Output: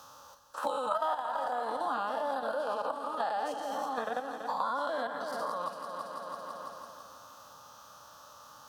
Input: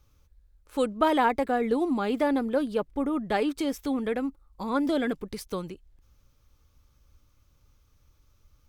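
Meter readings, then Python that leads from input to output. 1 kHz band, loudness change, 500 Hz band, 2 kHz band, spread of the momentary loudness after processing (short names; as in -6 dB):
-1.0 dB, -6.5 dB, -6.5 dB, -5.0 dB, 20 LU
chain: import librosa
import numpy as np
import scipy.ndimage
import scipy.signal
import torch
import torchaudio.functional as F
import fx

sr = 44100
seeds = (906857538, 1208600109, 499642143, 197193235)

p1 = fx.spec_dilate(x, sr, span_ms=240)
p2 = fx.lowpass(p1, sr, hz=3200.0, slope=6)
p3 = fx.dereverb_blind(p2, sr, rt60_s=0.96)
p4 = scipy.signal.sosfilt(scipy.signal.butter(2, 530.0, 'highpass', fs=sr, output='sos'), p3)
p5 = fx.level_steps(p4, sr, step_db=10)
p6 = fx.fixed_phaser(p5, sr, hz=920.0, stages=4)
p7 = p6 + fx.echo_heads(p6, sr, ms=166, heads='first and second', feedback_pct=47, wet_db=-14.0, dry=0)
y = fx.band_squash(p7, sr, depth_pct=100)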